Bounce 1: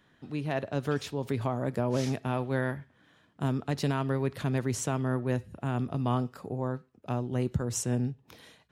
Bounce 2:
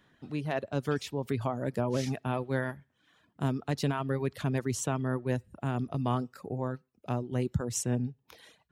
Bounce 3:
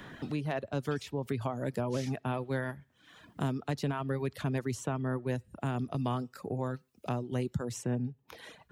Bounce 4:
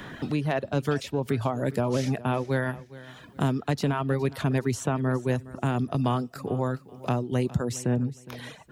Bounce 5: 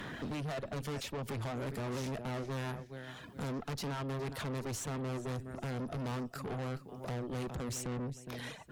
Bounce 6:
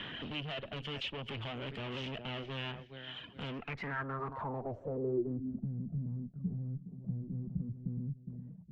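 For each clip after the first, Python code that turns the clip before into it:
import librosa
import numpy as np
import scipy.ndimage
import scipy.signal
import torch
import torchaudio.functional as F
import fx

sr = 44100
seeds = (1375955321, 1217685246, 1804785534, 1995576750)

y1 = fx.dereverb_blind(x, sr, rt60_s=0.7)
y2 = fx.band_squash(y1, sr, depth_pct=70)
y2 = y2 * librosa.db_to_amplitude(-2.5)
y3 = fx.echo_feedback(y2, sr, ms=413, feedback_pct=27, wet_db=-18.0)
y3 = y3 * librosa.db_to_amplitude(7.0)
y4 = fx.tube_stage(y3, sr, drive_db=36.0, bias=0.45)
y5 = fx.filter_sweep_lowpass(y4, sr, from_hz=3000.0, to_hz=180.0, start_s=3.52, end_s=5.73, q=7.6)
y5 = y5 * librosa.db_to_amplitude(-4.0)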